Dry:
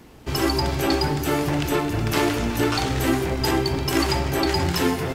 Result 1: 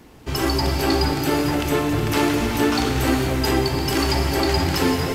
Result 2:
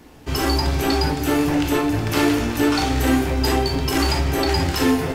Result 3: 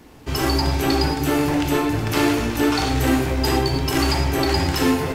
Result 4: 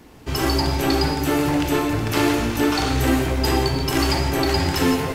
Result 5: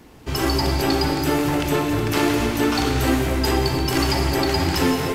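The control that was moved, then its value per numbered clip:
gated-style reverb, gate: 510 ms, 80 ms, 130 ms, 190 ms, 330 ms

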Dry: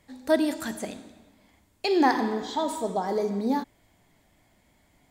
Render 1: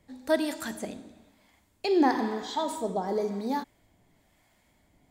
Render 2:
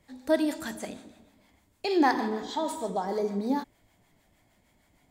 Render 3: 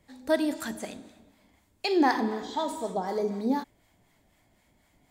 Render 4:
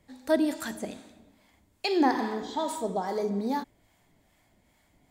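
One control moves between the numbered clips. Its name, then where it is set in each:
harmonic tremolo, rate: 1 Hz, 6.5 Hz, 4 Hz, 2.4 Hz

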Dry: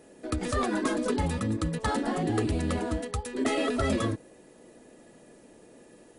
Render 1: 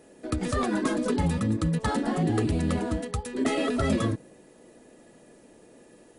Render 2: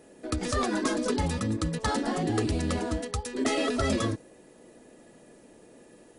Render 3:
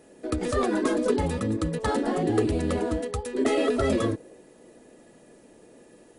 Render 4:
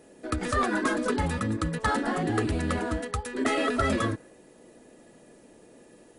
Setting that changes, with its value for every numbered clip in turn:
dynamic bell, frequency: 160 Hz, 5.5 kHz, 430 Hz, 1.5 kHz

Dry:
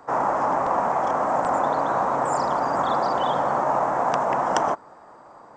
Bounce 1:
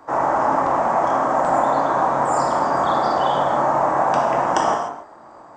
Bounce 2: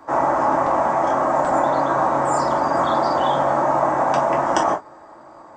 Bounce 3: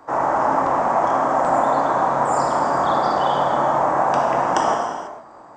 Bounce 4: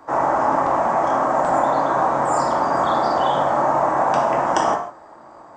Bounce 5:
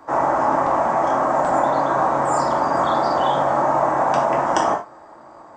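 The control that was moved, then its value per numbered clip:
gated-style reverb, gate: 330 ms, 80 ms, 520 ms, 200 ms, 130 ms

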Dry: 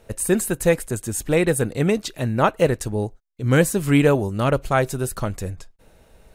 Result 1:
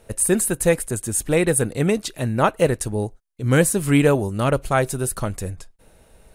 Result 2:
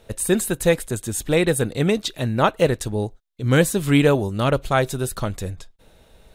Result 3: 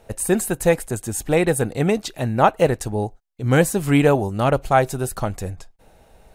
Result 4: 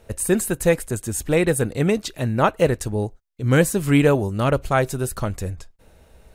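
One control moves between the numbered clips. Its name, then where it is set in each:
peaking EQ, frequency: 9.7 kHz, 3.6 kHz, 770 Hz, 71 Hz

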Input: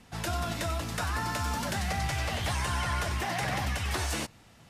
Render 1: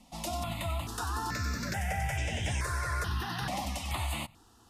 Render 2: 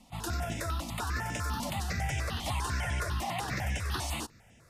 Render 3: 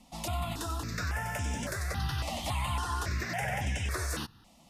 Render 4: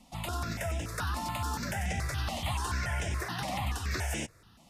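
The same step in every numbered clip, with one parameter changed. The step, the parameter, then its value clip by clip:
stepped phaser, rate: 2.3 Hz, 10 Hz, 3.6 Hz, 7 Hz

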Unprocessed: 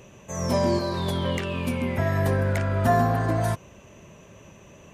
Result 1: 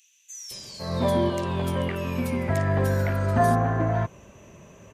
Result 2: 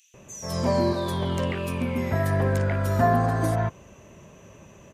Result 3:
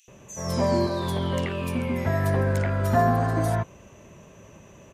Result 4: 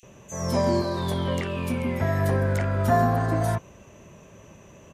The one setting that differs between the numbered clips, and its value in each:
bands offset in time, time: 510 ms, 140 ms, 80 ms, 30 ms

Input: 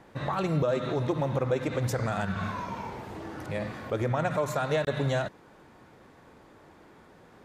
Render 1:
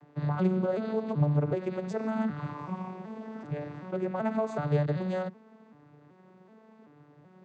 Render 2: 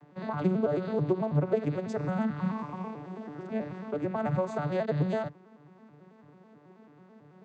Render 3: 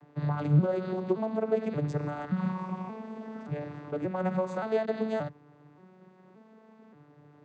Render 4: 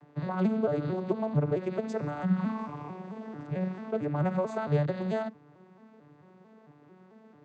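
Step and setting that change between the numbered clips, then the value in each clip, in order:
vocoder on a broken chord, a note every: 381 ms, 109 ms, 577 ms, 222 ms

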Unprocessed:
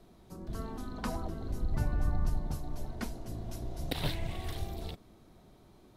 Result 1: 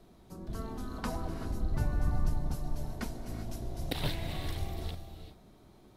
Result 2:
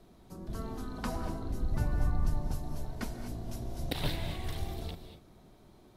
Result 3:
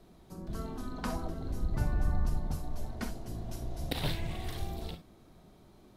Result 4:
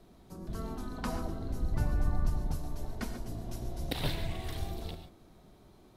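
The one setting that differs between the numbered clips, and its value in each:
gated-style reverb, gate: 420 ms, 260 ms, 80 ms, 160 ms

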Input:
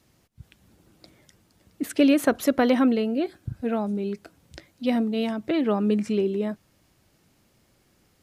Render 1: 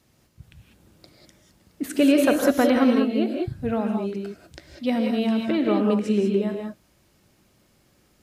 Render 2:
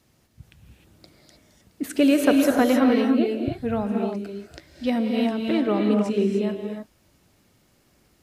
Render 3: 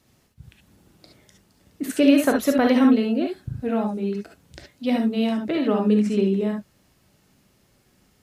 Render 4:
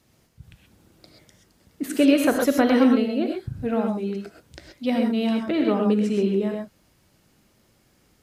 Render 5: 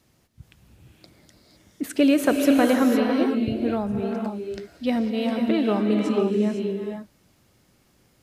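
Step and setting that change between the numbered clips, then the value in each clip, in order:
gated-style reverb, gate: 220 ms, 330 ms, 90 ms, 150 ms, 530 ms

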